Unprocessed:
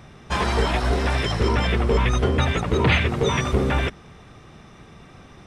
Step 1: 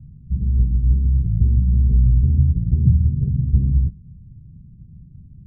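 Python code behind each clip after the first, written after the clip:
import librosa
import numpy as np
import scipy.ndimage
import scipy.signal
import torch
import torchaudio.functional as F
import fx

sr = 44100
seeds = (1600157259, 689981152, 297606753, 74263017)

y = scipy.signal.sosfilt(scipy.signal.cheby2(4, 80, 980.0, 'lowpass', fs=sr, output='sos'), x)
y = y * librosa.db_to_amplitude(7.5)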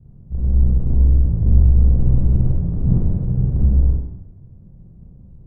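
y = fx.octave_divider(x, sr, octaves=2, level_db=-3.0)
y = fx.rev_schroeder(y, sr, rt60_s=0.92, comb_ms=32, drr_db=-6.0)
y = y * librosa.db_to_amplitude(-7.0)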